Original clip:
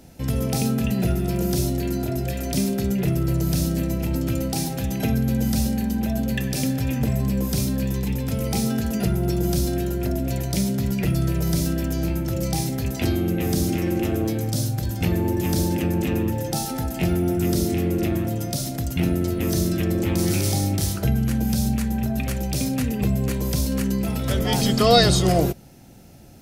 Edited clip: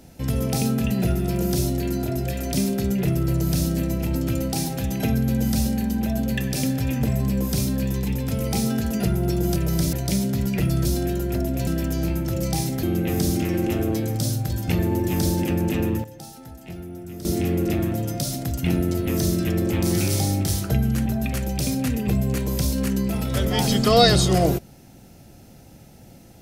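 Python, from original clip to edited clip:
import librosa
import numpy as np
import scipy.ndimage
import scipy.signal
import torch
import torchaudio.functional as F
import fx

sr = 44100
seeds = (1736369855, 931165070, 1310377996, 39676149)

y = fx.edit(x, sr, fx.swap(start_s=9.56, length_s=0.82, other_s=11.3, other_length_s=0.37),
    fx.cut(start_s=12.83, length_s=0.33),
    fx.fade_down_up(start_s=16.13, length_s=1.69, db=-14.5, fade_s=0.24, curve='log'),
    fx.cut(start_s=21.39, length_s=0.61), tone=tone)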